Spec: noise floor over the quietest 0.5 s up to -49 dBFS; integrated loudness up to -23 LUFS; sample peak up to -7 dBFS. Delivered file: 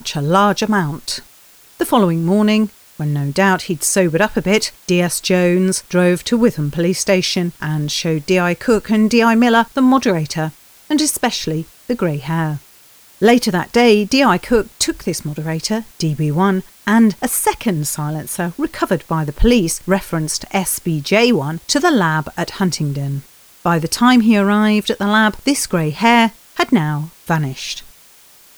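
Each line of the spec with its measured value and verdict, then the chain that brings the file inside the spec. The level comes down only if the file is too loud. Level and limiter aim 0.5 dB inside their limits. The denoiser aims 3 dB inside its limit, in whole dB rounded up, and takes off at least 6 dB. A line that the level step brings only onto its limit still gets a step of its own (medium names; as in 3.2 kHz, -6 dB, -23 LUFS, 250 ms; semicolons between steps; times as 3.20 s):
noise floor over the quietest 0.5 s -46 dBFS: fail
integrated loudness -16.0 LUFS: fail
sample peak -1.5 dBFS: fail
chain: trim -7.5 dB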